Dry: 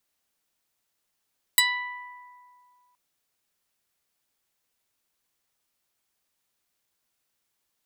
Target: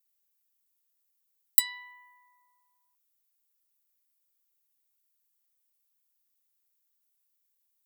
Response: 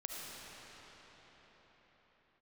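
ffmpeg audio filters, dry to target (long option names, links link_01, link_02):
-af "highpass=frequency=780:poles=1,aemphasis=mode=production:type=50fm,volume=-14dB"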